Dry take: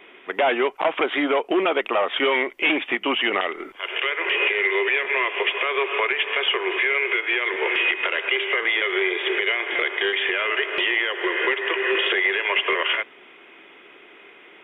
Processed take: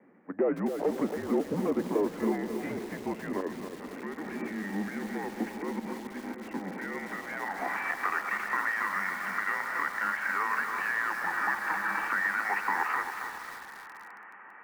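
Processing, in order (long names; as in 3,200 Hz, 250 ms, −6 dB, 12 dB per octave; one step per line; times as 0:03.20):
0:05.79–0:06.47: compressor whose output falls as the input rises −27 dBFS, ratio −0.5
band-pass filter sweep 470 Hz → 1,300 Hz, 0:06.53–0:07.90
feedback delay with all-pass diffusion 507 ms, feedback 68%, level −15 dB
single-sideband voice off tune −190 Hz 480–2,300 Hz
feedback echo at a low word length 274 ms, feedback 55%, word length 7 bits, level −7 dB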